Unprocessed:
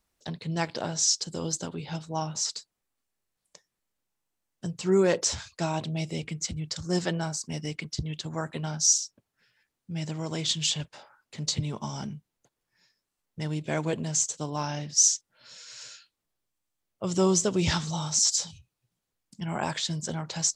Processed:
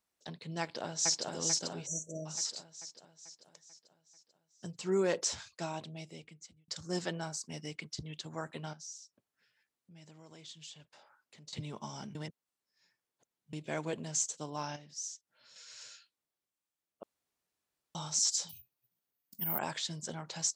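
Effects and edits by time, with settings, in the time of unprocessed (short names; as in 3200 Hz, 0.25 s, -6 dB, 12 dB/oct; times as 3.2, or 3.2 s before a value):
0.61–1.29 echo throw 0.44 s, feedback 55%, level -1.5 dB
1.86–2.26 spectral delete 670–5700 Hz
5.46–6.68 fade out linear
8.73–11.53 compressor 2:1, threshold -53 dBFS
12.15–13.53 reverse
14.76–15.56 compressor 1.5:1, threshold -57 dBFS
17.03–17.95 room tone
18.49–19.59 careless resampling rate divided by 3×, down filtered, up zero stuff
whole clip: HPF 220 Hz 6 dB/oct; gain -6.5 dB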